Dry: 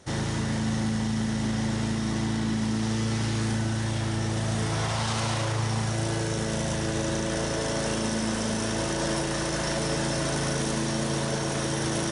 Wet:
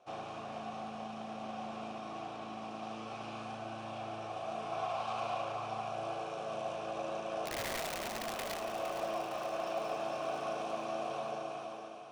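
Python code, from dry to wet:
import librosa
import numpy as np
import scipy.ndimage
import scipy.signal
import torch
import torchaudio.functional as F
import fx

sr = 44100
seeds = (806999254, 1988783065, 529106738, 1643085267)

p1 = fx.fade_out_tail(x, sr, length_s=1.01)
p2 = fx.vowel_filter(p1, sr, vowel='a')
p3 = fx.overflow_wrap(p2, sr, gain_db=36.0, at=(7.45, 8.6))
p4 = p3 + fx.echo_feedback(p3, sr, ms=461, feedback_pct=59, wet_db=-10, dry=0)
y = p4 * 10.0 ** (3.0 / 20.0)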